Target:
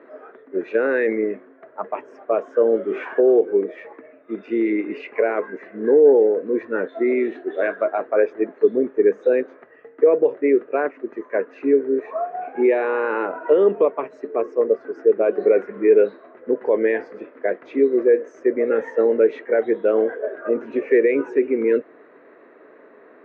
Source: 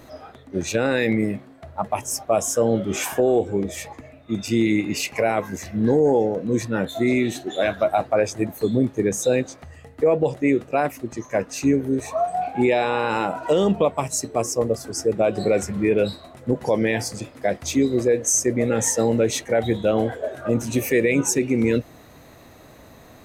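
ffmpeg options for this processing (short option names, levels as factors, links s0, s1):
-af "highpass=f=290:w=0.5412,highpass=f=290:w=1.3066,equalizer=f=420:t=q:w=4:g=9,equalizer=f=790:t=q:w=4:g=-8,equalizer=f=1600:t=q:w=4:g=4,lowpass=f=2000:w=0.5412,lowpass=f=2000:w=1.3066"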